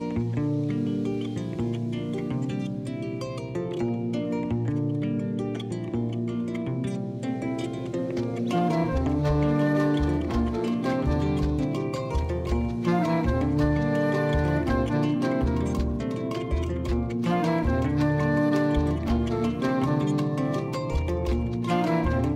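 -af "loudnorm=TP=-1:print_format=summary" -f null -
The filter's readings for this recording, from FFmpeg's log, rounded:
Input Integrated:    -26.5 LUFS
Input True Peak:     -11.7 dBTP
Input LRA:             4.5 LU
Input Threshold:     -36.5 LUFS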